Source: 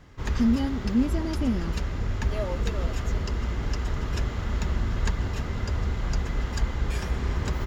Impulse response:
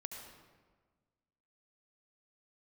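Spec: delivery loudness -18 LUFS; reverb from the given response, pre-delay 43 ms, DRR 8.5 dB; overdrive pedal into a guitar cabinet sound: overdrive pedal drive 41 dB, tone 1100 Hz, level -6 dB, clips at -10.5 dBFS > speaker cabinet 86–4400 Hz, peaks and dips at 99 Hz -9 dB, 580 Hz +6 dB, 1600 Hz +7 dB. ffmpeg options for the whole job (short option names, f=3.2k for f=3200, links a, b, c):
-filter_complex "[0:a]asplit=2[a][b];[1:a]atrim=start_sample=2205,adelay=43[c];[b][c]afir=irnorm=-1:irlink=0,volume=-6dB[d];[a][d]amix=inputs=2:normalize=0,asplit=2[e][f];[f]highpass=f=720:p=1,volume=41dB,asoftclip=type=tanh:threshold=-10.5dB[g];[e][g]amix=inputs=2:normalize=0,lowpass=f=1.1k:p=1,volume=-6dB,highpass=86,equalizer=f=99:t=q:w=4:g=-9,equalizer=f=580:t=q:w=4:g=6,equalizer=f=1.6k:t=q:w=4:g=7,lowpass=f=4.4k:w=0.5412,lowpass=f=4.4k:w=1.3066,volume=0.5dB"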